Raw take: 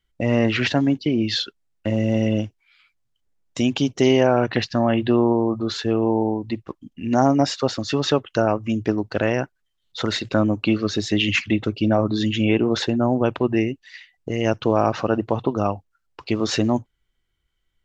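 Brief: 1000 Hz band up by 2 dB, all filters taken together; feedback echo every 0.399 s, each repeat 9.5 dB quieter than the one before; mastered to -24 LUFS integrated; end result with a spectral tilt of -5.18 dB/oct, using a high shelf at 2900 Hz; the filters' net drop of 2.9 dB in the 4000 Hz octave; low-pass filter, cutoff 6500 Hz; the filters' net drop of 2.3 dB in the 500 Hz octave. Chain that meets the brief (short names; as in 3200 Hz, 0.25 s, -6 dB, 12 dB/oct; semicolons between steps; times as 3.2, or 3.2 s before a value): LPF 6500 Hz; bell 500 Hz -4.5 dB; bell 1000 Hz +4.5 dB; high shelf 2900 Hz +5.5 dB; bell 4000 Hz -8 dB; feedback echo 0.399 s, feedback 33%, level -9.5 dB; gain -1.5 dB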